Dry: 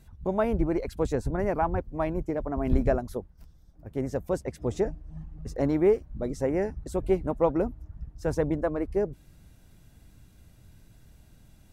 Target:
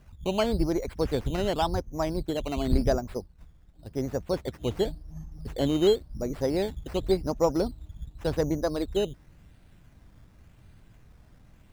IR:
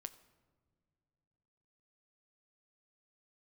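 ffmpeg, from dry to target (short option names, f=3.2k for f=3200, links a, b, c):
-filter_complex "[0:a]acrusher=samples=10:mix=1:aa=0.000001:lfo=1:lforange=6:lforate=0.91,acrossover=split=5600[a][b];[b]acompressor=threshold=-48dB:ratio=4:attack=1:release=60[c];[a][c]amix=inputs=2:normalize=0"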